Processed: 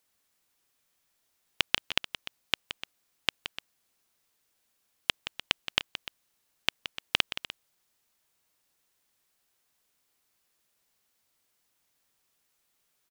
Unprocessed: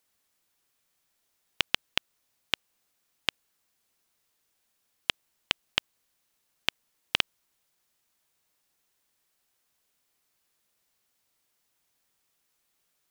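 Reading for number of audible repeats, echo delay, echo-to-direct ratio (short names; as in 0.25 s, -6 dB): 2, 0.172 s, -9.5 dB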